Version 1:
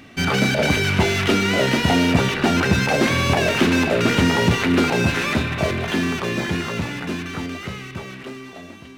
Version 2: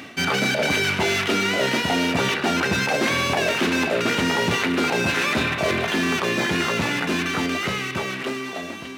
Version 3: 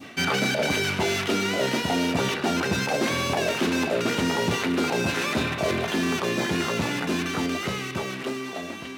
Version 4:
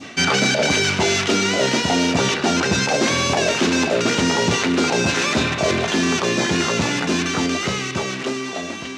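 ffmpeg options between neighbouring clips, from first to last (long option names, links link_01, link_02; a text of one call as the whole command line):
ffmpeg -i in.wav -af "highpass=frequency=320:poles=1,areverse,acompressor=threshold=-28dB:ratio=6,areverse,volume=9dB" out.wav
ffmpeg -i in.wav -af "adynamicequalizer=threshold=0.0178:dfrequency=2000:dqfactor=0.79:tfrequency=2000:tqfactor=0.79:attack=5:release=100:ratio=0.375:range=2.5:mode=cutabove:tftype=bell,volume=-1.5dB" out.wav
ffmpeg -i in.wav -af "lowpass=frequency=6600:width_type=q:width=1.9,volume=5.5dB" out.wav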